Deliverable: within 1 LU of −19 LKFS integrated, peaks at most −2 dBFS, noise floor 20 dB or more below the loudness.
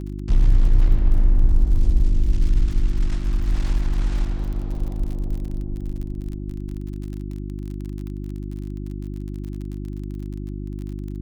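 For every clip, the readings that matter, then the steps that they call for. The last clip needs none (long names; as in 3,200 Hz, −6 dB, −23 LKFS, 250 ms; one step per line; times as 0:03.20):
crackle rate 37 per second; mains hum 50 Hz; hum harmonics up to 350 Hz; level of the hum −27 dBFS; integrated loudness −26.0 LKFS; sample peak −5.5 dBFS; target loudness −19.0 LKFS
→ click removal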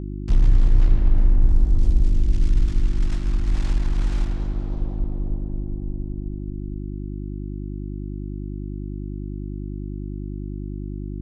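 crackle rate 0 per second; mains hum 50 Hz; hum harmonics up to 350 Hz; level of the hum −27 dBFS
→ hum removal 50 Hz, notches 7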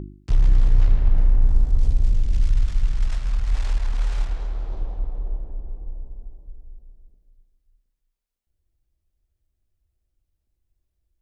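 mains hum none found; integrated loudness −24.5 LKFS; sample peak −5.5 dBFS; target loudness −19.0 LKFS
→ level +5.5 dB
brickwall limiter −2 dBFS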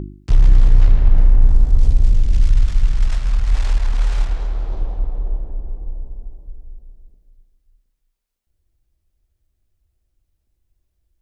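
integrated loudness −19.5 LKFS; sample peak −2.0 dBFS; background noise floor −72 dBFS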